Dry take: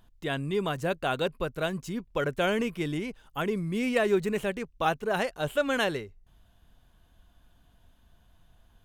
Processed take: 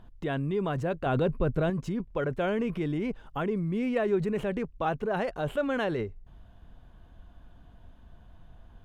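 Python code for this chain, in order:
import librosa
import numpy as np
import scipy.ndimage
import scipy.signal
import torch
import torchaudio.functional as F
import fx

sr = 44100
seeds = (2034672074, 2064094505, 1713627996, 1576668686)

p1 = fx.lowpass(x, sr, hz=1100.0, slope=6)
p2 = fx.over_compress(p1, sr, threshold_db=-38.0, ratio=-1.0)
p3 = p1 + (p2 * librosa.db_to_amplitude(0.5))
p4 = fx.low_shelf(p3, sr, hz=350.0, db=8.5, at=(1.06, 1.7))
y = p4 * librosa.db_to_amplitude(-2.0)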